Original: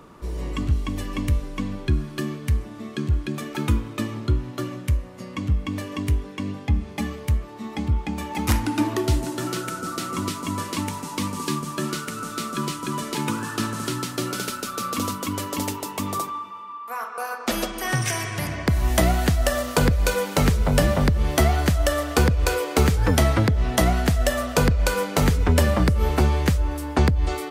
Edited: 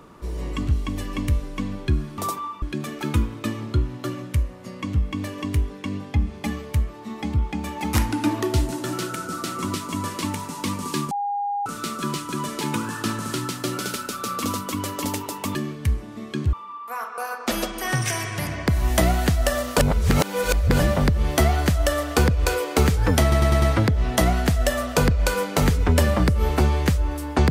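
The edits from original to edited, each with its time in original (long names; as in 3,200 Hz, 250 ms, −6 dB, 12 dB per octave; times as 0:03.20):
0:02.18–0:03.16: swap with 0:16.09–0:16.53
0:11.65–0:12.20: beep over 812 Hz −22.5 dBFS
0:19.79–0:20.80: reverse
0:23.22: stutter 0.10 s, 5 plays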